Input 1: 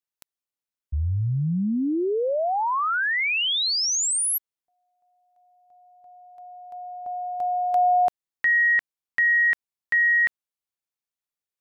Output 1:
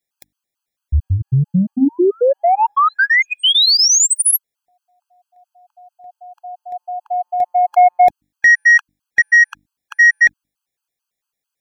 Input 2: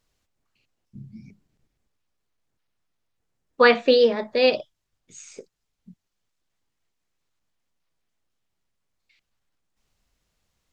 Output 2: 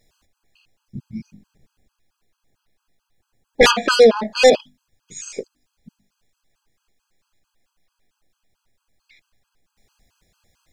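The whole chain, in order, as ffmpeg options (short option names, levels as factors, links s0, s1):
-af "aeval=exprs='0.668*sin(PI/2*3.16*val(0)/0.668)':c=same,bandreject=f=50:t=h:w=6,bandreject=f=100:t=h:w=6,bandreject=f=150:t=h:w=6,bandreject=f=200:t=h:w=6,bandreject=f=250:t=h:w=6,bandreject=f=300:t=h:w=6,afftfilt=real='re*gt(sin(2*PI*4.5*pts/sr)*(1-2*mod(floor(b*sr/1024/830),2)),0)':imag='im*gt(sin(2*PI*4.5*pts/sr)*(1-2*mod(floor(b*sr/1024/830),2)),0)':win_size=1024:overlap=0.75,volume=0.891"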